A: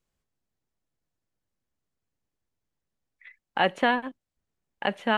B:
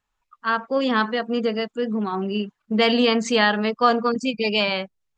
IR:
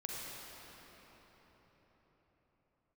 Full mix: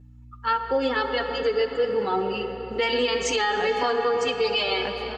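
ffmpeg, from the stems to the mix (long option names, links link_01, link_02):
-filter_complex "[0:a]volume=-6dB,asplit=2[link_01][link_02];[link_02]volume=-13dB[link_03];[1:a]aecho=1:1:2.3:0.88,aeval=exprs='val(0)+0.00447*(sin(2*PI*60*n/s)+sin(2*PI*2*60*n/s)/2+sin(2*PI*3*60*n/s)/3+sin(2*PI*4*60*n/s)/4+sin(2*PI*5*60*n/s)/5)':channel_layout=same,asplit=2[link_04][link_05];[link_05]adelay=6.3,afreqshift=0.47[link_06];[link_04][link_06]amix=inputs=2:normalize=1,volume=-0.5dB,asplit=3[link_07][link_08][link_09];[link_08]volume=-4dB[link_10];[link_09]apad=whole_len=228411[link_11];[link_01][link_11]sidechaingate=range=-33dB:threshold=-47dB:ratio=16:detection=peak[link_12];[2:a]atrim=start_sample=2205[link_13];[link_03][link_10]amix=inputs=2:normalize=0[link_14];[link_14][link_13]afir=irnorm=-1:irlink=0[link_15];[link_12][link_07][link_15]amix=inputs=3:normalize=0,equalizer=frequency=68:width_type=o:width=1.4:gain=4,alimiter=limit=-14.5dB:level=0:latency=1:release=147"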